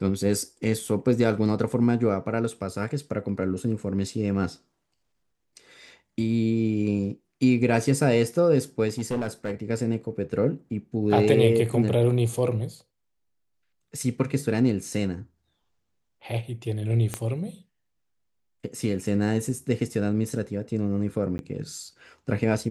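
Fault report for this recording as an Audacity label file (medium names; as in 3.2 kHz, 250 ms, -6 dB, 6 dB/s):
8.880000	9.520000	clipped -22.5 dBFS
17.140000	17.140000	pop -14 dBFS
21.380000	21.390000	dropout 11 ms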